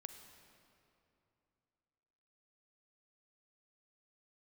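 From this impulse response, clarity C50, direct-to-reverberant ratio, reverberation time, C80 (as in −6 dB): 7.5 dB, 7.0 dB, 2.8 s, 8.5 dB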